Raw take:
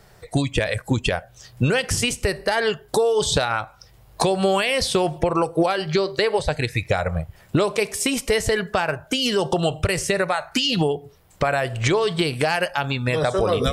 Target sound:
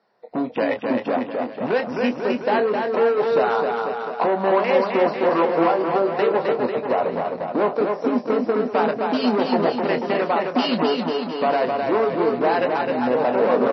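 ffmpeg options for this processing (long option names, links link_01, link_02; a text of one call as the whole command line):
ffmpeg -i in.wav -filter_complex "[0:a]afwtdn=0.0708,equalizer=frequency=2700:width=2.5:gain=-3,aresample=16000,asoftclip=type=hard:threshold=-21.5dB,aresample=44100,highpass=frequency=230:width=0.5412,highpass=frequency=230:width=1.3066,equalizer=frequency=230:width_type=q:width=4:gain=10,equalizer=frequency=500:width_type=q:width=4:gain=4,equalizer=frequency=710:width_type=q:width=4:gain=4,equalizer=frequency=1000:width_type=q:width=4:gain=7,equalizer=frequency=3300:width_type=q:width=4:gain=-6,lowpass=frequency=4800:width=0.5412,lowpass=frequency=4800:width=1.3066,asplit=2[link_01][link_02];[link_02]adelay=24,volume=-8.5dB[link_03];[link_01][link_03]amix=inputs=2:normalize=0,aecho=1:1:260|494|704.6|894.1|1065:0.631|0.398|0.251|0.158|0.1,volume=1.5dB" -ar 22050 -c:a libmp3lame -b:a 24k out.mp3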